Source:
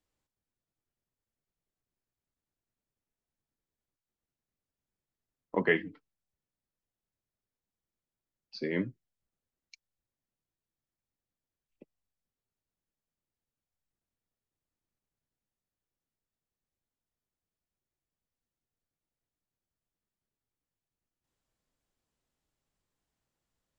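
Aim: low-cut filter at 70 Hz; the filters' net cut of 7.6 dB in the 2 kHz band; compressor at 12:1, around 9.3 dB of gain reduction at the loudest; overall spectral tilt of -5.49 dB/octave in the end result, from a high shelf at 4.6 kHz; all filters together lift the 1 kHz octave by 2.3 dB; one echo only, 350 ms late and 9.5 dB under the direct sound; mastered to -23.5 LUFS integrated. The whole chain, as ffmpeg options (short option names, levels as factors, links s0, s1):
-af "highpass=70,equalizer=f=1000:t=o:g=4.5,equalizer=f=2000:t=o:g=-8.5,highshelf=f=4600:g=-8.5,acompressor=threshold=0.0251:ratio=12,aecho=1:1:350:0.335,volume=8.41"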